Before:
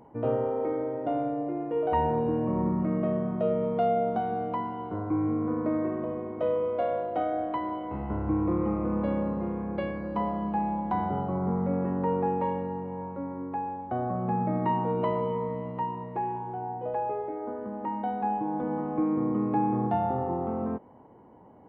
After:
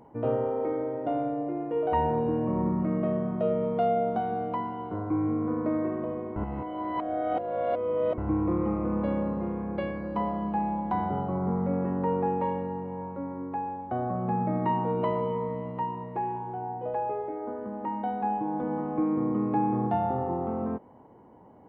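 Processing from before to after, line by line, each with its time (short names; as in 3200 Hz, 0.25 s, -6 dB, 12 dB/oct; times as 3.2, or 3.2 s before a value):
6.36–8.18 reverse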